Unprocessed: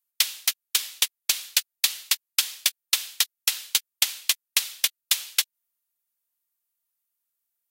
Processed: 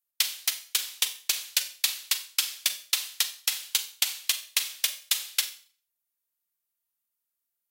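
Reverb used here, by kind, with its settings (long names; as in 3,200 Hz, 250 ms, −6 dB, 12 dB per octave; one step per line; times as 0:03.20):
four-comb reverb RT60 0.43 s, combs from 30 ms, DRR 9 dB
level −3.5 dB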